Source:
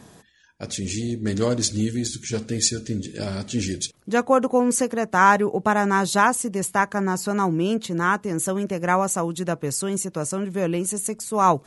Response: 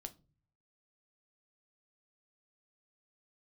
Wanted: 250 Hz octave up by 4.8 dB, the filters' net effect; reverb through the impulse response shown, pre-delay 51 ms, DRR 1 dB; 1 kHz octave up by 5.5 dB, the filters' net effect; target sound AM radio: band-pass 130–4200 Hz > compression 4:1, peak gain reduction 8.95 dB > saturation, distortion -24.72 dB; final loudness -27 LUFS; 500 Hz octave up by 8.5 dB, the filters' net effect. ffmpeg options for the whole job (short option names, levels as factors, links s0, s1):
-filter_complex "[0:a]equalizer=f=250:t=o:g=4.5,equalizer=f=500:t=o:g=8,equalizer=f=1000:t=o:g=4,asplit=2[s0][s1];[1:a]atrim=start_sample=2205,adelay=51[s2];[s1][s2]afir=irnorm=-1:irlink=0,volume=1.58[s3];[s0][s3]amix=inputs=2:normalize=0,highpass=130,lowpass=4200,acompressor=threshold=0.251:ratio=4,asoftclip=threshold=0.631,volume=0.376"